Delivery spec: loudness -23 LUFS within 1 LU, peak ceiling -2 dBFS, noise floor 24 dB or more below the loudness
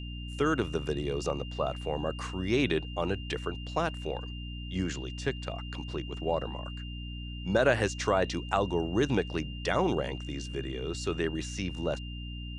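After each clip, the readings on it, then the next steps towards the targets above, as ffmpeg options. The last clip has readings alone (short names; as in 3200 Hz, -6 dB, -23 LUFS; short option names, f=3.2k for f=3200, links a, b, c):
hum 60 Hz; harmonics up to 300 Hz; hum level -37 dBFS; steady tone 2800 Hz; tone level -45 dBFS; loudness -32.0 LUFS; peak -12.0 dBFS; loudness target -23.0 LUFS
-> -af "bandreject=f=60:t=h:w=4,bandreject=f=120:t=h:w=4,bandreject=f=180:t=h:w=4,bandreject=f=240:t=h:w=4,bandreject=f=300:t=h:w=4"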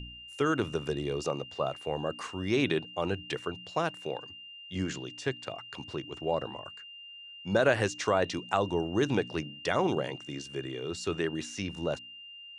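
hum none; steady tone 2800 Hz; tone level -45 dBFS
-> -af "bandreject=f=2.8k:w=30"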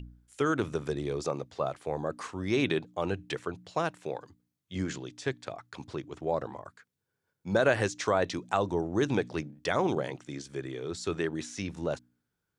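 steady tone none; loudness -32.0 LUFS; peak -12.0 dBFS; loudness target -23.0 LUFS
-> -af "volume=9dB"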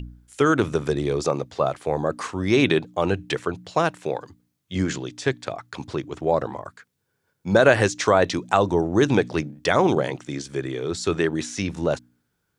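loudness -23.0 LUFS; peak -3.0 dBFS; noise floor -75 dBFS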